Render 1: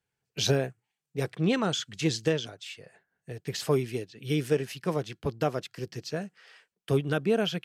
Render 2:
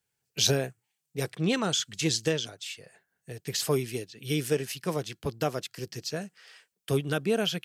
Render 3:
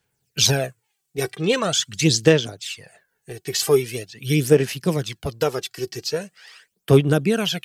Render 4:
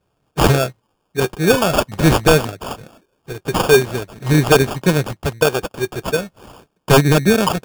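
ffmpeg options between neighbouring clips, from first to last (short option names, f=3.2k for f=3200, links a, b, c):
-af "highshelf=f=4.2k:g=11.5,volume=-1.5dB"
-af "aphaser=in_gain=1:out_gain=1:delay=2.7:decay=0.58:speed=0.43:type=sinusoidal,volume=5.5dB"
-filter_complex "[0:a]acrossover=split=3200[a][b];[a]aeval=exprs='0.316*(abs(mod(val(0)/0.316+3,4)-2)-1)':c=same[c];[b]afreqshift=-29[d];[c][d]amix=inputs=2:normalize=0,acrusher=samples=22:mix=1:aa=0.000001,volume=6.5dB"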